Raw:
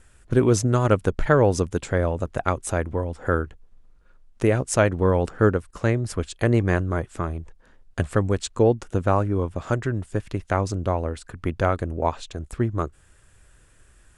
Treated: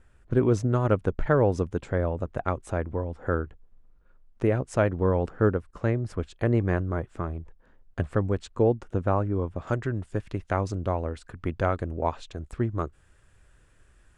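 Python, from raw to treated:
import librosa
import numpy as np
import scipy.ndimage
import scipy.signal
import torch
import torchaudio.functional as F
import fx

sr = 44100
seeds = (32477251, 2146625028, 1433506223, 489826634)

y = fx.lowpass(x, sr, hz=fx.steps((0.0, 1600.0), (9.67, 3900.0)), slope=6)
y = F.gain(torch.from_numpy(y), -3.5).numpy()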